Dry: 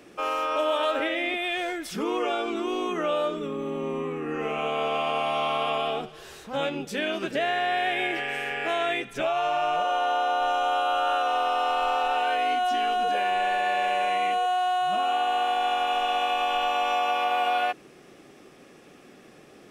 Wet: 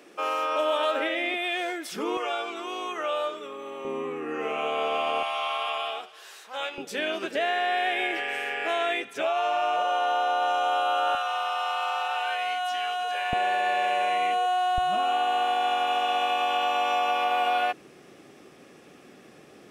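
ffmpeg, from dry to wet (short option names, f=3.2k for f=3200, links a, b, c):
-af "asetnsamples=n=441:p=0,asendcmd='2.17 highpass f 610;3.85 highpass f 290;5.23 highpass f 850;6.78 highpass f 320;11.15 highpass f 880;13.33 highpass f 240;14.78 highpass f 60',highpass=290"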